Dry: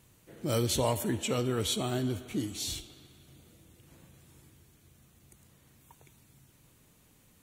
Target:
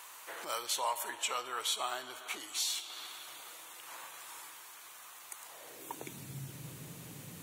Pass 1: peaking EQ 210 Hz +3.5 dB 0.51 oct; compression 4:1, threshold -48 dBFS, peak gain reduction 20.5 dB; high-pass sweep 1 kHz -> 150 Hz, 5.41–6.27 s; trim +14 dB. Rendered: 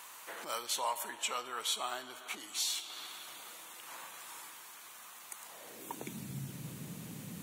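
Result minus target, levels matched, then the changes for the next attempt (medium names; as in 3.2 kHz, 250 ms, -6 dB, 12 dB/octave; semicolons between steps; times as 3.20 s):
250 Hz band +5.5 dB
change: peaking EQ 210 Hz -7.5 dB 0.51 oct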